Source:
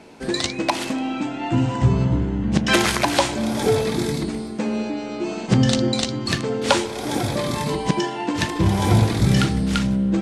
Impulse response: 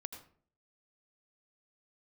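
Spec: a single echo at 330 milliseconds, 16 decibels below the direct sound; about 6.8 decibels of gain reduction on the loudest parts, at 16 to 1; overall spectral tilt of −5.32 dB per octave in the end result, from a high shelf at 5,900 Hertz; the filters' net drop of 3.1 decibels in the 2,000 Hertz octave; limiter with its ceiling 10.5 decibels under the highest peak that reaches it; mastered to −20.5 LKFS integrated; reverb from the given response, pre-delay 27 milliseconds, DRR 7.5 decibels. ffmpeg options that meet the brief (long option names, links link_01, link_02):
-filter_complex "[0:a]equalizer=frequency=2000:width_type=o:gain=-4.5,highshelf=frequency=5900:gain=4,acompressor=threshold=-18dB:ratio=16,alimiter=limit=-16.5dB:level=0:latency=1,aecho=1:1:330:0.158,asplit=2[link_01][link_02];[1:a]atrim=start_sample=2205,adelay=27[link_03];[link_02][link_03]afir=irnorm=-1:irlink=0,volume=-4.5dB[link_04];[link_01][link_04]amix=inputs=2:normalize=0,volume=4.5dB"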